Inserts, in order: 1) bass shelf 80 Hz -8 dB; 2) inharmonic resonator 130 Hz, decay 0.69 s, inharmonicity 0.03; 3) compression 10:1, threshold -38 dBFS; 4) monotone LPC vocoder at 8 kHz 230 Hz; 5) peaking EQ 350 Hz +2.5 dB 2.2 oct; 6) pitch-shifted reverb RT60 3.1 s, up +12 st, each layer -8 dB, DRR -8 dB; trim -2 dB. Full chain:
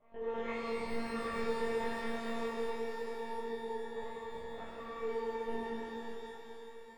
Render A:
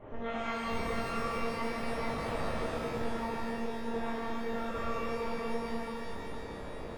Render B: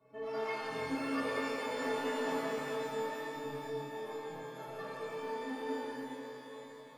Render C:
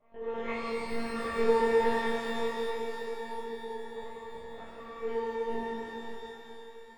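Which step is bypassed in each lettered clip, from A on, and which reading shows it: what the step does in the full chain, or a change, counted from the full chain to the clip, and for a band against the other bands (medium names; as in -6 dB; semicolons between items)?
2, 125 Hz band +8.0 dB; 4, 500 Hz band -3.0 dB; 3, mean gain reduction 1.5 dB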